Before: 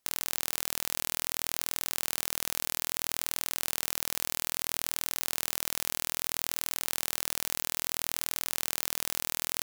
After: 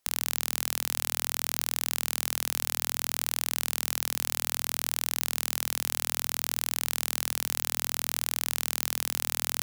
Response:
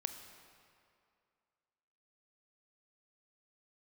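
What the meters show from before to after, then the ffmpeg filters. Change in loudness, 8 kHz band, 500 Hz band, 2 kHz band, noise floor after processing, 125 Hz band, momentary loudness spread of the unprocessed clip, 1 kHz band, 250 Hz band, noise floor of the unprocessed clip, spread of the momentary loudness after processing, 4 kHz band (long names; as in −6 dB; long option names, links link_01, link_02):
+2.5 dB, +2.5 dB, +2.0 dB, +2.5 dB, −60 dBFS, −0.5 dB, 0 LU, +2.5 dB, −0.5 dB, −78 dBFS, 0 LU, +2.5 dB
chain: -af "equalizer=frequency=210:width_type=o:width=0.4:gain=-11,bandreject=frequency=60:width_type=h:width=6,bandreject=frequency=120:width_type=h:width=6,volume=2.5dB"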